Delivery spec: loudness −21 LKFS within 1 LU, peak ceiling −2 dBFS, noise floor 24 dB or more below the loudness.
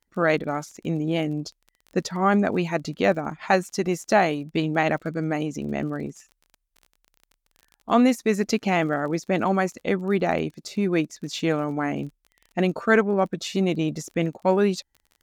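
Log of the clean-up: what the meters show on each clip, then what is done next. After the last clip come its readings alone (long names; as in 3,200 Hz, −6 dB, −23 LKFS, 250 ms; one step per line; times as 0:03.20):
crackle rate 30 per second; integrated loudness −24.5 LKFS; sample peak −6.5 dBFS; target loudness −21.0 LKFS
→ click removal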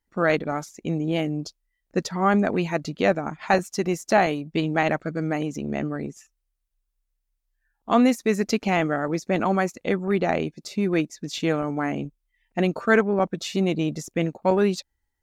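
crackle rate 0 per second; integrated loudness −24.5 LKFS; sample peak −6.5 dBFS; target loudness −21.0 LKFS
→ level +3.5 dB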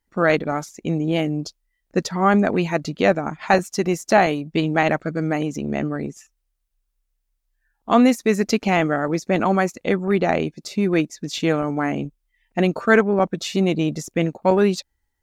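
integrated loudness −21.0 LKFS; sample peak −3.0 dBFS; background noise floor −74 dBFS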